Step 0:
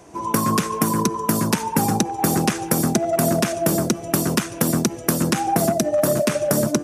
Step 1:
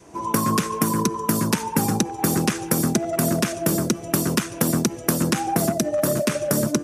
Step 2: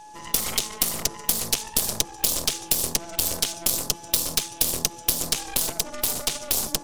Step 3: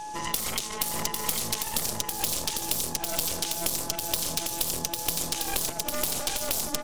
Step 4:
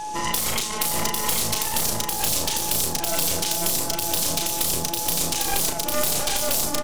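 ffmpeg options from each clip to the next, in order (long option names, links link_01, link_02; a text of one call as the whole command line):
ffmpeg -i in.wav -af "adynamicequalizer=threshold=0.0158:dfrequency=730:dqfactor=2.6:tfrequency=730:tqfactor=2.6:attack=5:release=100:ratio=0.375:range=3:mode=cutabove:tftype=bell,volume=-1dB" out.wav
ffmpeg -i in.wav -af "aeval=exprs='val(0)+0.0355*sin(2*PI*850*n/s)':channel_layout=same,aeval=exprs='0.668*(cos(1*acos(clip(val(0)/0.668,-1,1)))-cos(1*PI/2))+0.211*(cos(6*acos(clip(val(0)/0.668,-1,1)))-cos(6*PI/2))+0.211*(cos(7*acos(clip(val(0)/0.668,-1,1)))-cos(7*PI/2))':channel_layout=same,highshelf=frequency=2400:width_type=q:width=1.5:gain=12.5,volume=-13.5dB" out.wav
ffmpeg -i in.wav -filter_complex "[0:a]asplit=2[link_01][link_02];[link_02]alimiter=limit=-12dB:level=0:latency=1:release=37,volume=2.5dB[link_03];[link_01][link_03]amix=inputs=2:normalize=0,acompressor=threshold=-26dB:ratio=6,aecho=1:1:800:0.596" out.wav
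ffmpeg -i in.wav -filter_complex "[0:a]asoftclip=type=hard:threshold=-19.5dB,asplit=2[link_01][link_02];[link_02]adelay=35,volume=-5dB[link_03];[link_01][link_03]amix=inputs=2:normalize=0,volume=5.5dB" out.wav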